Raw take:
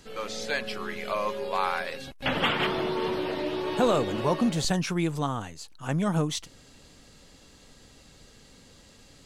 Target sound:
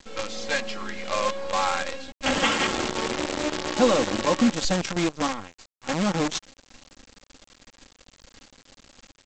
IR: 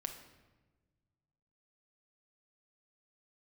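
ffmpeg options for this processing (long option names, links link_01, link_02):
-af "aecho=1:1:3.7:0.86,aresample=16000,acrusher=bits=5:dc=4:mix=0:aa=0.000001,aresample=44100"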